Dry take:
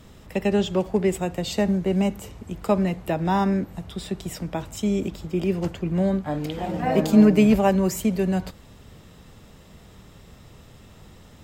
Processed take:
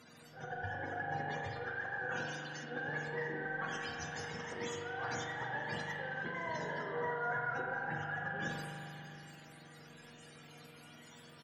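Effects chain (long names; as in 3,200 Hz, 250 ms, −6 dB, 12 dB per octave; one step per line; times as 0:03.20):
frequency axis turned over on the octave scale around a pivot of 550 Hz
high-pass filter 130 Hz 24 dB per octave
treble cut that deepens with the level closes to 2,200 Hz, closed at −23 dBFS
reversed playback
downward compressor 10 to 1, threshold −33 dBFS, peak gain reduction 21 dB
reversed playback
transient designer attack −12 dB, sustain +11 dB
tuned comb filter 240 Hz, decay 0.34 s, harmonics all, mix 80%
single-tap delay 686 ms −21 dB
spring reverb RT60 2.8 s, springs 40 ms, chirp 80 ms, DRR 0 dB
level +5 dB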